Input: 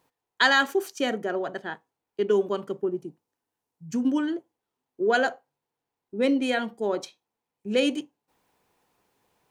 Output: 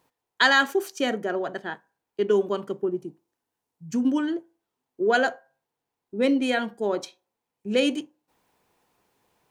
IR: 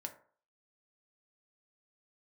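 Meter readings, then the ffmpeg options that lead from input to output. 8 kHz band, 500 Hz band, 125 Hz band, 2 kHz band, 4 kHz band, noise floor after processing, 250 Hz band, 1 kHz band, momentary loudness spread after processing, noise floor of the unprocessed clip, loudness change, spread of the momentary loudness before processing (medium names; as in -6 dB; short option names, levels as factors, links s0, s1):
+1.0 dB, +1.0 dB, +1.5 dB, +1.5 dB, +1.0 dB, -85 dBFS, +1.5 dB, +1.0 dB, 16 LU, under -85 dBFS, +1.0 dB, 15 LU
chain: -filter_complex "[0:a]asplit=2[s0][s1];[1:a]atrim=start_sample=2205,asetrate=48510,aresample=44100[s2];[s1][s2]afir=irnorm=-1:irlink=0,volume=0.266[s3];[s0][s3]amix=inputs=2:normalize=0"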